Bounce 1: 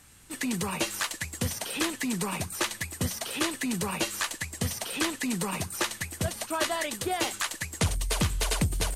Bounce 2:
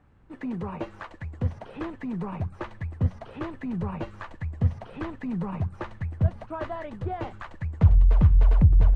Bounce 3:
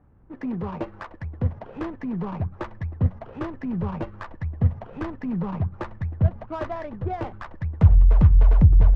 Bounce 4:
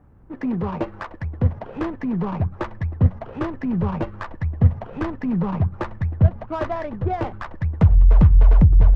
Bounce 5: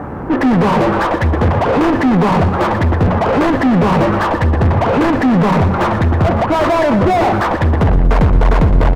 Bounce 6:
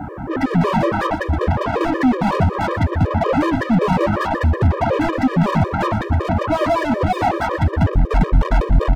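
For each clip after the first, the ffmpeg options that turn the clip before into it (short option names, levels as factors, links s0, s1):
-af "lowpass=1000,asubboost=boost=5.5:cutoff=130"
-af "adynamicsmooth=sensitivity=5.5:basefreq=1300,volume=1.41"
-af "alimiter=limit=0.316:level=0:latency=1:release=417,volume=1.78"
-filter_complex "[0:a]asplit=2[s0][s1];[s1]highpass=f=720:p=1,volume=224,asoftclip=type=tanh:threshold=0.596[s2];[s0][s2]amix=inputs=2:normalize=0,lowpass=f=1000:p=1,volume=0.501,aecho=1:1:119|238|357|476|595:0.266|0.13|0.0639|0.0313|0.0153"
-af "afftfilt=real='re*gt(sin(2*PI*5.4*pts/sr)*(1-2*mod(floor(b*sr/1024/320),2)),0)':imag='im*gt(sin(2*PI*5.4*pts/sr)*(1-2*mod(floor(b*sr/1024/320),2)),0)':win_size=1024:overlap=0.75,volume=0.841"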